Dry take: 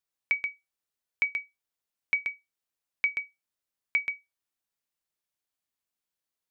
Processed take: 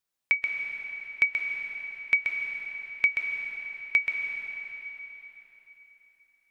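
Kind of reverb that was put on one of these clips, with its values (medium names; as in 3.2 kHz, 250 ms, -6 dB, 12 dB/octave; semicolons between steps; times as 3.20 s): algorithmic reverb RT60 3.8 s, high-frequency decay 0.9×, pre-delay 110 ms, DRR 3 dB; trim +3 dB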